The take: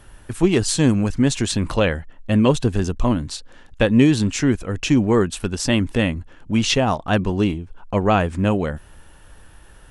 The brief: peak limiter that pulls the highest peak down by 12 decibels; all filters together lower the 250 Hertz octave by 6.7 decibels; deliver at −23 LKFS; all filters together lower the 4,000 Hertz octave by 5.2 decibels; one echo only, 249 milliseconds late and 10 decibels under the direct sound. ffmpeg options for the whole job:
ffmpeg -i in.wav -af "equalizer=frequency=250:width_type=o:gain=-8.5,equalizer=frequency=4000:width_type=o:gain=-7,alimiter=limit=-18dB:level=0:latency=1,aecho=1:1:249:0.316,volume=5.5dB" out.wav

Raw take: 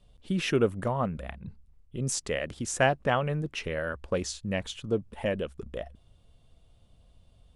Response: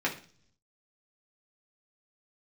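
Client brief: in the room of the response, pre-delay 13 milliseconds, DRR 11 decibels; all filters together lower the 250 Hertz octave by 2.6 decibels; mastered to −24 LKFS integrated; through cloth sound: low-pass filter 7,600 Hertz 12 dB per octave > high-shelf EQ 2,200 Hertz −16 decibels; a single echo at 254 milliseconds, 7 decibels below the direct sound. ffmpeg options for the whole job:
-filter_complex "[0:a]equalizer=frequency=250:width_type=o:gain=-3.5,aecho=1:1:254:0.447,asplit=2[link_01][link_02];[1:a]atrim=start_sample=2205,adelay=13[link_03];[link_02][link_03]afir=irnorm=-1:irlink=0,volume=-20dB[link_04];[link_01][link_04]amix=inputs=2:normalize=0,lowpass=7600,highshelf=frequency=2200:gain=-16,volume=8dB"

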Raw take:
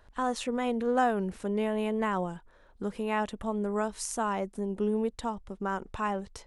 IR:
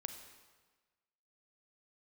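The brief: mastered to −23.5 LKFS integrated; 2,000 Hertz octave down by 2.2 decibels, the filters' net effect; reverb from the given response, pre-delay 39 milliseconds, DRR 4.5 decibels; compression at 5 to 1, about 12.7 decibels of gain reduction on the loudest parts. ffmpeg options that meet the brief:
-filter_complex "[0:a]equalizer=frequency=2000:width_type=o:gain=-3,acompressor=threshold=-35dB:ratio=5,asplit=2[link_01][link_02];[1:a]atrim=start_sample=2205,adelay=39[link_03];[link_02][link_03]afir=irnorm=-1:irlink=0,volume=-2dB[link_04];[link_01][link_04]amix=inputs=2:normalize=0,volume=14.5dB"

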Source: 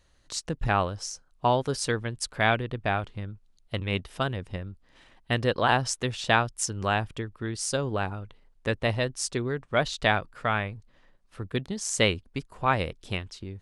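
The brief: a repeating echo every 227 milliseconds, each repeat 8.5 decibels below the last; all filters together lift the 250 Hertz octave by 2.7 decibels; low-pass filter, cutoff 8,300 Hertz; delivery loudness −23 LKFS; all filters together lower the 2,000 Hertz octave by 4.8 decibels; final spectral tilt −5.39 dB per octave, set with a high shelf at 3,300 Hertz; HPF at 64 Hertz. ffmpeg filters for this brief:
ffmpeg -i in.wav -af "highpass=64,lowpass=8300,equalizer=frequency=250:width_type=o:gain=3.5,equalizer=frequency=2000:width_type=o:gain=-5,highshelf=frequency=3300:gain=-5,aecho=1:1:227|454|681|908:0.376|0.143|0.0543|0.0206,volume=6dB" out.wav

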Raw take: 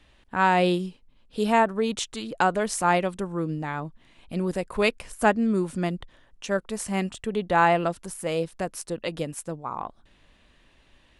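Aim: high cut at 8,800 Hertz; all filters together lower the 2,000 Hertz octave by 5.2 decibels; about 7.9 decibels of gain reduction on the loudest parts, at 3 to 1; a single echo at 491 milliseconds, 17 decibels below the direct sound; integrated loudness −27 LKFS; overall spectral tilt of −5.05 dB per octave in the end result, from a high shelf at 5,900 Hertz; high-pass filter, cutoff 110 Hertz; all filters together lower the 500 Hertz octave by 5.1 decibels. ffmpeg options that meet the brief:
ffmpeg -i in.wav -af "highpass=110,lowpass=8800,equalizer=frequency=500:width_type=o:gain=-6.5,equalizer=frequency=2000:width_type=o:gain=-6.5,highshelf=frequency=5900:gain=-3,acompressor=threshold=-29dB:ratio=3,aecho=1:1:491:0.141,volume=7.5dB" out.wav

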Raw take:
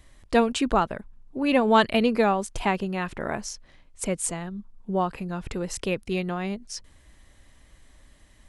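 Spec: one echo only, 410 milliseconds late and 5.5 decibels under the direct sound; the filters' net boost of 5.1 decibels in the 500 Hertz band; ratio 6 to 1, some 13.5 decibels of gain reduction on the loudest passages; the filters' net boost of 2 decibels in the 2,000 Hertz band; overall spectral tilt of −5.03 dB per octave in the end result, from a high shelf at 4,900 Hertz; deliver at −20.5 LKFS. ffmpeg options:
ffmpeg -i in.wav -af "equalizer=frequency=500:width_type=o:gain=6,equalizer=frequency=2000:width_type=o:gain=3.5,highshelf=frequency=4900:gain=-7,acompressor=threshold=-26dB:ratio=6,aecho=1:1:410:0.531,volume=10.5dB" out.wav

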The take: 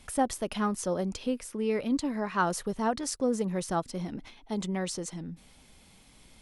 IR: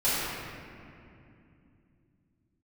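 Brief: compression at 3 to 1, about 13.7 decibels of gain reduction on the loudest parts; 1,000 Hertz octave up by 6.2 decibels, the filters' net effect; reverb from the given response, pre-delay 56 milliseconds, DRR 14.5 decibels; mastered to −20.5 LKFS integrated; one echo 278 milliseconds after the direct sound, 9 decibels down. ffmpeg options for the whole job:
-filter_complex "[0:a]equalizer=frequency=1000:width_type=o:gain=8,acompressor=threshold=-36dB:ratio=3,aecho=1:1:278:0.355,asplit=2[link_01][link_02];[1:a]atrim=start_sample=2205,adelay=56[link_03];[link_02][link_03]afir=irnorm=-1:irlink=0,volume=-28dB[link_04];[link_01][link_04]amix=inputs=2:normalize=0,volume=17dB"

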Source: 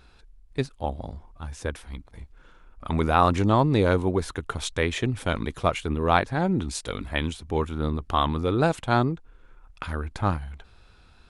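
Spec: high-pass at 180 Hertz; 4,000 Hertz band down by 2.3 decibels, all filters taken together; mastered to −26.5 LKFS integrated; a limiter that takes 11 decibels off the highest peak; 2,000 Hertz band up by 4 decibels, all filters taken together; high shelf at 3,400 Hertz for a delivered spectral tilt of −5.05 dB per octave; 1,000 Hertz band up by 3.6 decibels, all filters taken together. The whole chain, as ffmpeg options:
ffmpeg -i in.wav -af "highpass=180,equalizer=frequency=1000:width_type=o:gain=3.5,equalizer=frequency=2000:width_type=o:gain=4.5,highshelf=frequency=3400:gain=4,equalizer=frequency=4000:width_type=o:gain=-7.5,volume=2dB,alimiter=limit=-10dB:level=0:latency=1" out.wav

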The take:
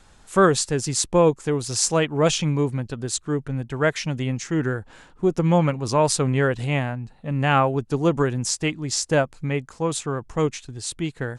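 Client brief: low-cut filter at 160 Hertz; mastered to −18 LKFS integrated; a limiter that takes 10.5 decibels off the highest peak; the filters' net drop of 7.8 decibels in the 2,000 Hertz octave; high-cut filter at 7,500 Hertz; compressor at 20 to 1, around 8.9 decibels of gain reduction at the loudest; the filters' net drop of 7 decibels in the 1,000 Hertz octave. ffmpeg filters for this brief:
ffmpeg -i in.wav -af "highpass=160,lowpass=7500,equalizer=frequency=1000:width_type=o:gain=-7,equalizer=frequency=2000:width_type=o:gain=-8,acompressor=threshold=-23dB:ratio=20,volume=13dB,alimiter=limit=-7.5dB:level=0:latency=1" out.wav

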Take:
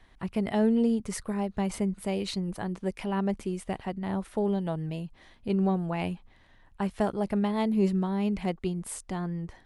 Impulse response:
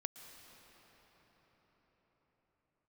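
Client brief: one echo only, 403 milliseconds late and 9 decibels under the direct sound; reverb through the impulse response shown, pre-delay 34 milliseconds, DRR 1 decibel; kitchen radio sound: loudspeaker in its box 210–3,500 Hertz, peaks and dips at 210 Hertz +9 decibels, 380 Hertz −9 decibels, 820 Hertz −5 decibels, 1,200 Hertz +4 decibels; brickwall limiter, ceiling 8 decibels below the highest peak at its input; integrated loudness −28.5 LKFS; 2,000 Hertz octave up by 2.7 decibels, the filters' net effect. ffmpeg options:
-filter_complex "[0:a]equalizer=frequency=2000:width_type=o:gain=3,alimiter=limit=-21.5dB:level=0:latency=1,aecho=1:1:403:0.355,asplit=2[link_01][link_02];[1:a]atrim=start_sample=2205,adelay=34[link_03];[link_02][link_03]afir=irnorm=-1:irlink=0,volume=1.5dB[link_04];[link_01][link_04]amix=inputs=2:normalize=0,highpass=210,equalizer=frequency=210:width_type=q:width=4:gain=9,equalizer=frequency=380:width_type=q:width=4:gain=-9,equalizer=frequency=820:width_type=q:width=4:gain=-5,equalizer=frequency=1200:width_type=q:width=4:gain=4,lowpass=frequency=3500:width=0.5412,lowpass=frequency=3500:width=1.3066,volume=-1.5dB"

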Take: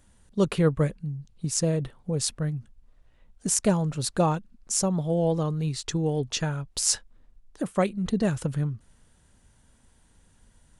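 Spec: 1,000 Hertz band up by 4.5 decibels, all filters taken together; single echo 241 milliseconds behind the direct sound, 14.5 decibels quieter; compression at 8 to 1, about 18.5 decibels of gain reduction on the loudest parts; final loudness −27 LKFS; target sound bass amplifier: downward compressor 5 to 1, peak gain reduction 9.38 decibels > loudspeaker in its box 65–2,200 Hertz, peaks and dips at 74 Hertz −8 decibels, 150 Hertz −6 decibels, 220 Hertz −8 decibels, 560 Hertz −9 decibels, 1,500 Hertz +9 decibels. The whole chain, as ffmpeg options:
ffmpeg -i in.wav -af "equalizer=frequency=1000:width_type=o:gain=5.5,acompressor=threshold=-36dB:ratio=8,aecho=1:1:241:0.188,acompressor=threshold=-42dB:ratio=5,highpass=frequency=65:width=0.5412,highpass=frequency=65:width=1.3066,equalizer=frequency=74:width_type=q:width=4:gain=-8,equalizer=frequency=150:width_type=q:width=4:gain=-6,equalizer=frequency=220:width_type=q:width=4:gain=-8,equalizer=frequency=560:width_type=q:width=4:gain=-9,equalizer=frequency=1500:width_type=q:width=4:gain=9,lowpass=frequency=2200:width=0.5412,lowpass=frequency=2200:width=1.3066,volume=24.5dB" out.wav

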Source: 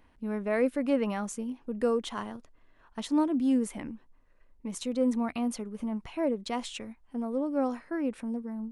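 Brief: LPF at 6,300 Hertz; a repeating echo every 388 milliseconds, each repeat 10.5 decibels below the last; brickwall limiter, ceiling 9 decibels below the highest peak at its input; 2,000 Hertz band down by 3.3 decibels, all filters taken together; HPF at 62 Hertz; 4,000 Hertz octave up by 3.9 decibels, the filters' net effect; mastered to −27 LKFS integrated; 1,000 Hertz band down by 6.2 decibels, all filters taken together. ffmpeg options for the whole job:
ffmpeg -i in.wav -af "highpass=62,lowpass=6300,equalizer=frequency=1000:width_type=o:gain=-8,equalizer=frequency=2000:width_type=o:gain=-3.5,equalizer=frequency=4000:width_type=o:gain=7,alimiter=level_in=2.5dB:limit=-24dB:level=0:latency=1,volume=-2.5dB,aecho=1:1:388|776|1164:0.299|0.0896|0.0269,volume=8.5dB" out.wav

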